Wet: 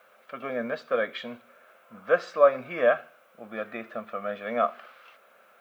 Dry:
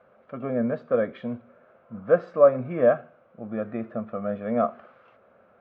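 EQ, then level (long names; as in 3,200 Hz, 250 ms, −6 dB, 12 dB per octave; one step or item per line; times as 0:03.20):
high-pass filter 150 Hz 6 dB per octave
spectral tilt +4 dB per octave
high-shelf EQ 2,200 Hz +10 dB
0.0 dB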